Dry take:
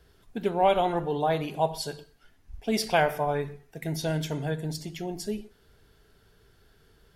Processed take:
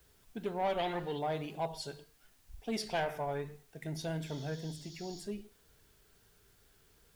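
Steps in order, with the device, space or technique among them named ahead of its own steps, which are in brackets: compact cassette (soft clip -18 dBFS, distortion -15 dB; LPF 10000 Hz; wow and flutter; white noise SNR 30 dB); 0.79–1.19 band shelf 2700 Hz +9.5 dB; 4.25–5.2 spectral repair 2900–7100 Hz both; gain -8 dB

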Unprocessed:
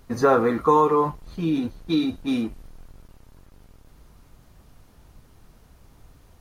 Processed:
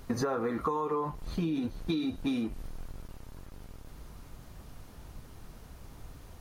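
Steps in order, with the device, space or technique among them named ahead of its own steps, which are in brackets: serial compression, leveller first (compressor 2:1, threshold -25 dBFS, peak gain reduction 7 dB; compressor 6:1, threshold -32 dBFS, peak gain reduction 12.5 dB); gain +3.5 dB

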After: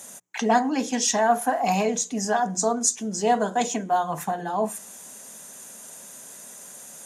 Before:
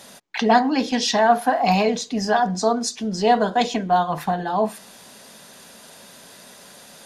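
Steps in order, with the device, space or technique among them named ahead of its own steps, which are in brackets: budget condenser microphone (HPF 84 Hz; resonant high shelf 5600 Hz +7.5 dB, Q 3); notches 60/120/180 Hz; gain -4 dB

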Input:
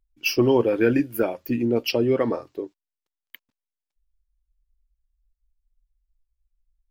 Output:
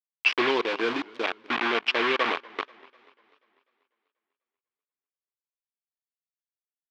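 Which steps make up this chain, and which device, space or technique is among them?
hand-held game console (bit-crush 4-bit; speaker cabinet 470–4000 Hz, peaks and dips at 560 Hz -7 dB, 1100 Hz +7 dB, 1600 Hz +5 dB, 2300 Hz +7 dB, 3200 Hz +4 dB); 0.5–1.23 bell 1900 Hz -3 dB -> -13 dB 2.2 oct; warbling echo 0.245 s, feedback 52%, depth 152 cents, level -23.5 dB; gain -1.5 dB

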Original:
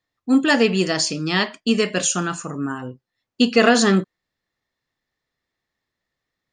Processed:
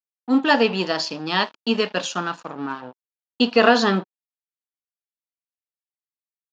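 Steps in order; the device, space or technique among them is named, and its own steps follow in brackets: blown loudspeaker (crossover distortion -34.5 dBFS; speaker cabinet 250–4700 Hz, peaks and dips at 370 Hz -5 dB, 930 Hz +6 dB, 2100 Hz -7 dB); gain +1.5 dB

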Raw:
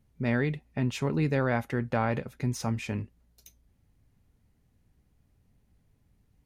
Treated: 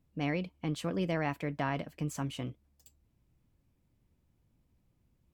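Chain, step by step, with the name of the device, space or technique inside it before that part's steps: nightcore (varispeed +21%); gain -5.5 dB

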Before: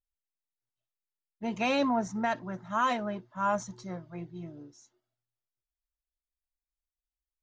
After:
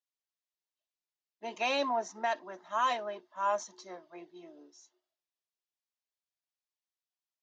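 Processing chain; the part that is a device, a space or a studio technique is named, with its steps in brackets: phone speaker on a table (speaker cabinet 380–6800 Hz, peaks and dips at 490 Hz -7 dB, 820 Hz -3 dB, 1400 Hz -8 dB, 2200 Hz -4 dB); gain +1.5 dB

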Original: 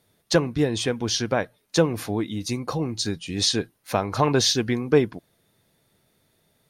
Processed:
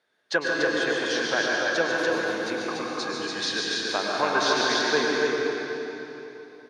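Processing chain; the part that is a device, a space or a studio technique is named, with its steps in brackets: station announcement (BPF 420–4800 Hz; bell 1600 Hz +11.5 dB 0.34 oct; loudspeakers at several distances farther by 50 m -6 dB, 99 m -3 dB; reverb RT60 3.4 s, pre-delay 96 ms, DRR -1.5 dB); gain -5 dB

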